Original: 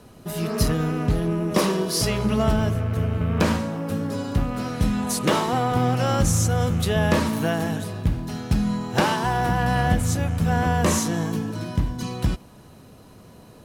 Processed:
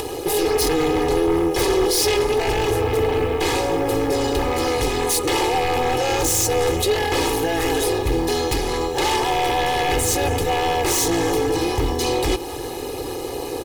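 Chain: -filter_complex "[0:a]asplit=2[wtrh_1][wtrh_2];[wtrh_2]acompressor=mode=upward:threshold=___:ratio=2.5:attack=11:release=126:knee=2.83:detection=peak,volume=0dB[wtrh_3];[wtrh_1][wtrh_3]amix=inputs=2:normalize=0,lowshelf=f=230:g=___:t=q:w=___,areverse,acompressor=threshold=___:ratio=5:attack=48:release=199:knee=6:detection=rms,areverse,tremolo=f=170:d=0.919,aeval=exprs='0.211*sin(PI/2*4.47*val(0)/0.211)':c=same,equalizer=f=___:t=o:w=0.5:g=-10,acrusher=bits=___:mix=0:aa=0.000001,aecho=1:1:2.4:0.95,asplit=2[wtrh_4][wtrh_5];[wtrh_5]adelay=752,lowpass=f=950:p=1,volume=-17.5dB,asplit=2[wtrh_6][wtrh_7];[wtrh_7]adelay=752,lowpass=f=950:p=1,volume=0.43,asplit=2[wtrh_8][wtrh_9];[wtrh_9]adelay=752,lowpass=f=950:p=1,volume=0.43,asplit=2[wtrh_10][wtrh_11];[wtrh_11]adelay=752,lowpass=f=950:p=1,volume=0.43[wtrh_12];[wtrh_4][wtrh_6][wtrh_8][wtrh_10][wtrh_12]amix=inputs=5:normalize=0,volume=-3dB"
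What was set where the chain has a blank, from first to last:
-35dB, -12.5, 1.5, -26dB, 1400, 7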